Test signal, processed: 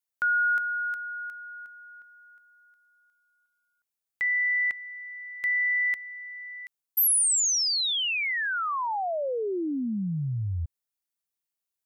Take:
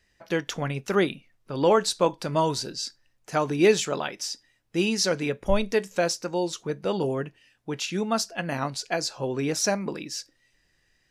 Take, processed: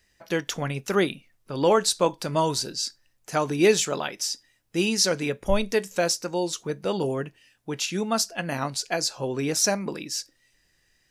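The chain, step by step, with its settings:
high-shelf EQ 6,500 Hz +9 dB

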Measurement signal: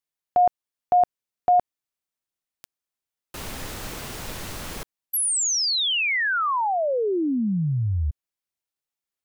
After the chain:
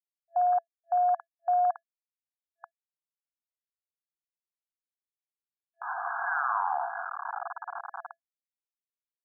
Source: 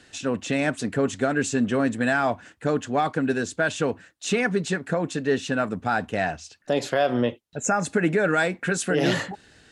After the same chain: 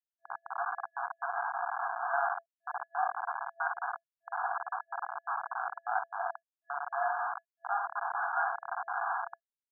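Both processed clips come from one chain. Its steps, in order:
spring reverb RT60 1.1 s, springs 54 ms, chirp 30 ms, DRR 1 dB
comparator with hysteresis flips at −17.5 dBFS
brick-wall band-pass 670–1,700 Hz

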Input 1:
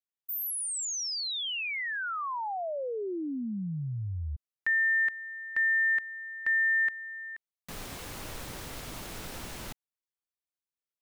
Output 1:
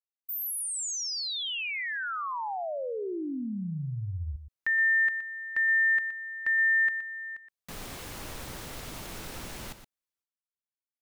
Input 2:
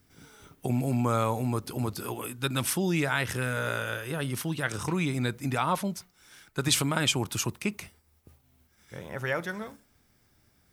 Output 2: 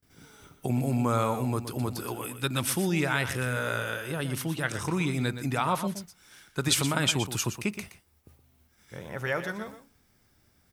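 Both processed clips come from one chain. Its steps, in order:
noise gate with hold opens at −54 dBFS, hold 458 ms, range −21 dB
on a send: single-tap delay 120 ms −11 dB

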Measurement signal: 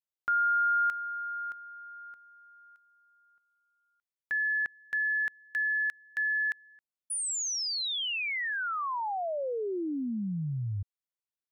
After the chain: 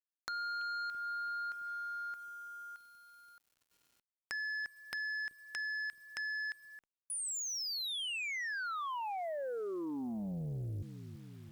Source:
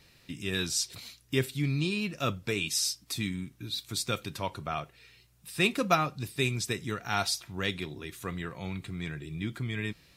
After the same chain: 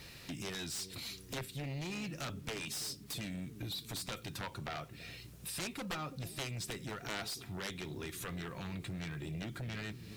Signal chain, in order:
dynamic equaliser 6,100 Hz, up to −4 dB, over −48 dBFS, Q 3.2
downward compressor 3 to 1, threshold −47 dBFS
on a send: bucket-brigade delay 333 ms, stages 1,024, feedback 67%, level −14 dB
on the sum: bit reduction 12 bits
harmonic generator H 7 −7 dB, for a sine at −26 dBFS
level +1.5 dB

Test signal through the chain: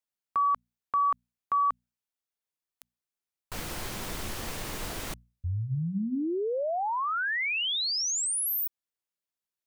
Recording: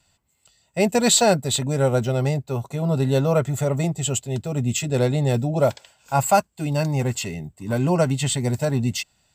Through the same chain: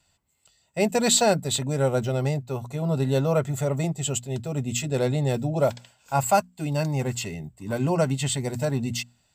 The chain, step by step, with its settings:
mains-hum notches 60/120/180/240 Hz
level −3 dB

